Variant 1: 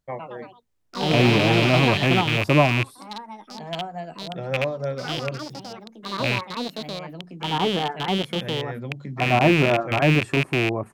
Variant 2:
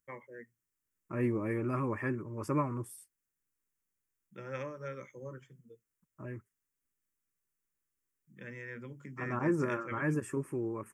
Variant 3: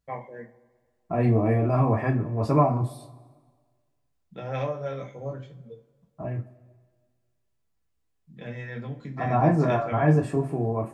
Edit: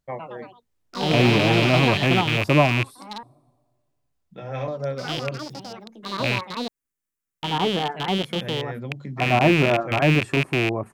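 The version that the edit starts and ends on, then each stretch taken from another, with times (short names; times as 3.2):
1
3.23–4.68 from 3
6.68–7.43 from 2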